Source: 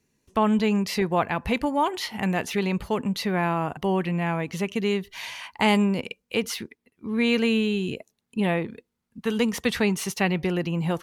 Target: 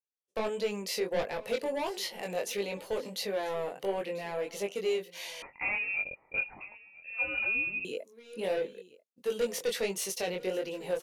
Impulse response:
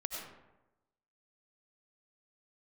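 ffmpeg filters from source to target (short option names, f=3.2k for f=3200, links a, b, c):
-filter_complex "[0:a]highpass=f=520:t=q:w=4.9,asoftclip=type=tanh:threshold=-15.5dB,equalizer=f=1k:w=0.43:g=-13.5,aecho=1:1:991:0.1,flanger=delay=20:depth=2.8:speed=1.5,agate=range=-33dB:threshold=-58dB:ratio=3:detection=peak,asettb=1/sr,asplit=3[a][b][c];[a]atrim=end=5.424[d];[b]atrim=start=5.42:end=7.85,asetpts=PTS-STARTPTS,afade=t=in:d=0.004:c=qsin,afade=t=out:st=2.426:d=0.004:c=qsin,lowpass=f=2.5k:t=q:w=0.5098,lowpass=f=2.5k:t=q:w=0.6013,lowpass=f=2.5k:t=q:w=0.9,lowpass=f=2.5k:t=q:w=2.563,afreqshift=-2900[e];[c]atrim=start=7.846[f];[d][e]acrossfade=d=0.004:c1=hsin:c2=qsin[g];[g][f]acrossfade=d=0.004:c1=qsin:c2=hsin,volume=3dB"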